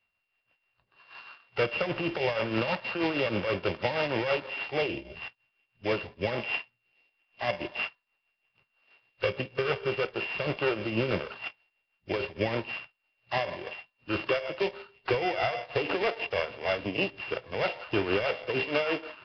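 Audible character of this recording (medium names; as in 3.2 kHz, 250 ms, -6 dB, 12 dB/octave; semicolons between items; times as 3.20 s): a buzz of ramps at a fixed pitch in blocks of 16 samples; tremolo triangle 6.3 Hz, depth 65%; Nellymoser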